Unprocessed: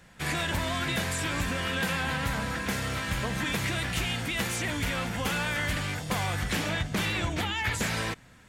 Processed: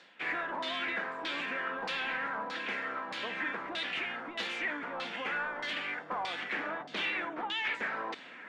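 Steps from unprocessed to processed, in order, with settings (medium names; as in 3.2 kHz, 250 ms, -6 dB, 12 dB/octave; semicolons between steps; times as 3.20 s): high-pass 270 Hz 24 dB/octave; reverse; upward compressor, threshold -34 dBFS; reverse; hard clipper -26 dBFS, distortion -17 dB; LFO low-pass saw down 1.6 Hz 890–4300 Hz; trim -6 dB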